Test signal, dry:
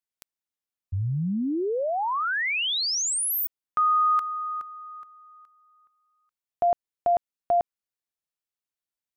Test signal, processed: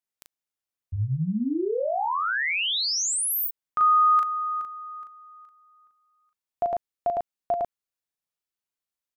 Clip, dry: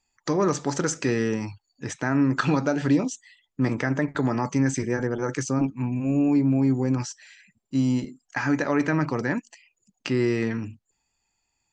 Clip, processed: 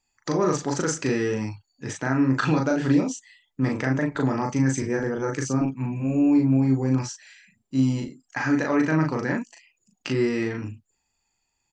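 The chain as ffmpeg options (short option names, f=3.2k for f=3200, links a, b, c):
-filter_complex "[0:a]asplit=2[a][b];[b]adelay=38,volume=-3dB[c];[a][c]amix=inputs=2:normalize=0,volume=-1.5dB"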